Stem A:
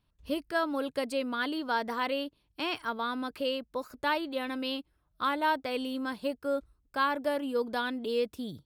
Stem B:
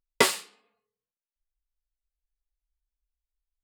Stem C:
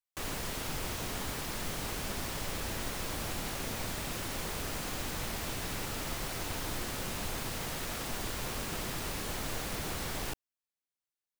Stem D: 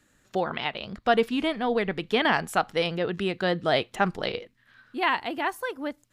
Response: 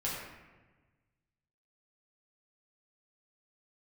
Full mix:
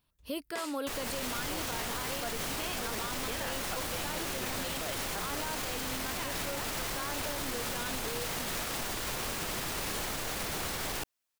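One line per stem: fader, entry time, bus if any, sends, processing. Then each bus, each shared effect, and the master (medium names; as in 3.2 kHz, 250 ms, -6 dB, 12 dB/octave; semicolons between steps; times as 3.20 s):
+0.5 dB, 0.00 s, no send, treble shelf 8.8 kHz +11 dB; peak limiter -24 dBFS, peak gain reduction 8 dB
-12.0 dB, 0.35 s, no send, none
+0.5 dB, 0.70 s, no send, level rider gain up to 9 dB
-9.5 dB, 1.15 s, no send, none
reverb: none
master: bass shelf 310 Hz -6 dB; peak limiter -26 dBFS, peak gain reduction 11 dB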